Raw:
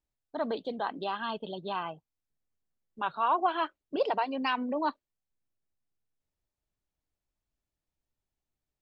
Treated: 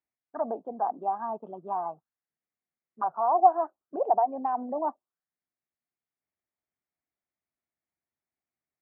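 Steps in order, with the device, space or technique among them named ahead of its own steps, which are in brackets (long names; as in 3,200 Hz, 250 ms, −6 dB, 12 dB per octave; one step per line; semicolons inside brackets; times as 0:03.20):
envelope filter bass rig (envelope-controlled low-pass 770–2,200 Hz down, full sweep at −29 dBFS; loudspeaker in its box 78–2,200 Hz, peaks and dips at 100 Hz −10 dB, 230 Hz +4 dB, 360 Hz +4 dB, 710 Hz +7 dB, 1,200 Hz +4 dB)
level −7.5 dB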